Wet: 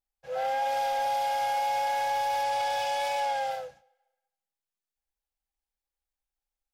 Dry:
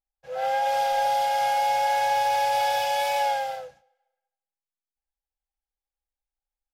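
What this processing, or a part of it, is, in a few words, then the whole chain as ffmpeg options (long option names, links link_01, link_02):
soft clipper into limiter: -filter_complex "[0:a]asettb=1/sr,asplit=3[link_01][link_02][link_03];[link_01]atrim=end=2.434[link_04];[link_02]atrim=start=2.43:end=3.51,asetpts=PTS-STARTPTS,afade=type=in:duration=0.004:curve=qsin,afade=type=out:start_time=1.076:duration=0.004:curve=qsin,equalizer=frequency=13000:width_type=o:width=0.29:gain=-11[link_05];[link_03]atrim=start=3.506[link_06];[link_04][link_05]acrossfade=duration=0.004:curve1=hsin:curve2=qsin[link_07];[link_07][link_06]acrossfade=duration=0.004:curve1=qsin:curve2=hsin,asoftclip=type=tanh:threshold=-16.5dB,alimiter=limit=-22.5dB:level=0:latency=1"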